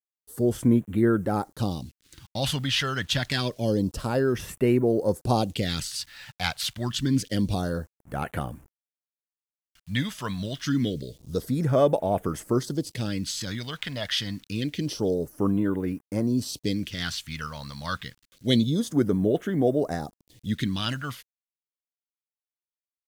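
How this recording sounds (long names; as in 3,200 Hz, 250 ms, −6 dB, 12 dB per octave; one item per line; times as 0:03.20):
a quantiser's noise floor 10 bits, dither none
phaser sweep stages 2, 0.27 Hz, lowest notch 340–4,400 Hz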